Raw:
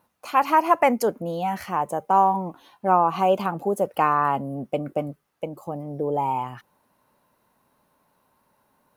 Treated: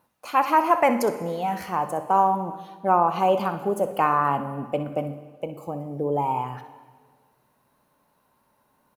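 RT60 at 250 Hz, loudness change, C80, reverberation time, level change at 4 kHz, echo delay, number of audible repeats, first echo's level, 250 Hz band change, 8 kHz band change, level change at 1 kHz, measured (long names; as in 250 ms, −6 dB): 1.8 s, −0.5 dB, 13.0 dB, 1.6 s, −0.5 dB, 63 ms, 1, −13.0 dB, −0.5 dB, can't be measured, −0.5 dB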